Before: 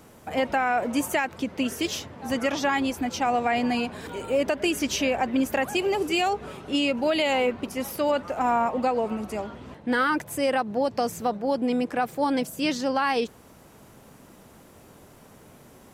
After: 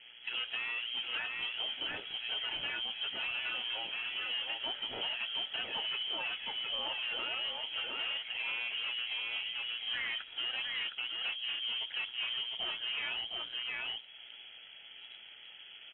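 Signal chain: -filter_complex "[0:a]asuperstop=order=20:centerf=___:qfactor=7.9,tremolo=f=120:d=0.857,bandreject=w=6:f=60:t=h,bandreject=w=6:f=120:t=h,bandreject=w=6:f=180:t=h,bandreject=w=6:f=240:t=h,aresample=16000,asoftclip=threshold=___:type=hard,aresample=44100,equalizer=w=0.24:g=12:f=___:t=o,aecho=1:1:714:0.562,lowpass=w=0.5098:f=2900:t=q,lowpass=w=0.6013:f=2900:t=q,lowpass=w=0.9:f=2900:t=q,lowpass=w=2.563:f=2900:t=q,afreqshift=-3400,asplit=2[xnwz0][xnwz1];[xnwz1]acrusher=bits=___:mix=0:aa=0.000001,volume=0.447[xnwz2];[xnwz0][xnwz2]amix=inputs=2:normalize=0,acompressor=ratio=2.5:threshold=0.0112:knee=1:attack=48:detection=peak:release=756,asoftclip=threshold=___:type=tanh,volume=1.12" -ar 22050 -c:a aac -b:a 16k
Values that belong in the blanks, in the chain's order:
2300, 0.0473, 67, 6, 0.0299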